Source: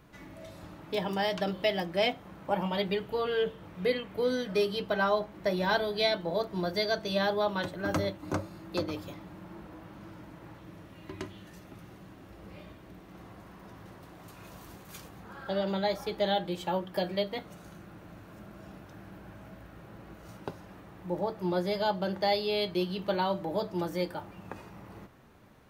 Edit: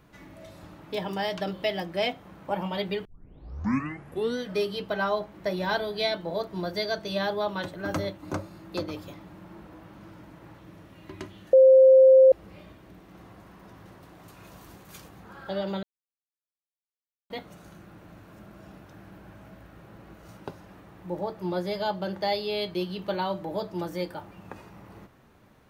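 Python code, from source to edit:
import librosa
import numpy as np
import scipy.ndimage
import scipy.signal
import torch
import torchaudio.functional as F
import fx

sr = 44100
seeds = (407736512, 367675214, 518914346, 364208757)

y = fx.edit(x, sr, fx.tape_start(start_s=3.05, length_s=1.33),
    fx.bleep(start_s=11.53, length_s=0.79, hz=526.0, db=-11.0),
    fx.silence(start_s=15.83, length_s=1.47), tone=tone)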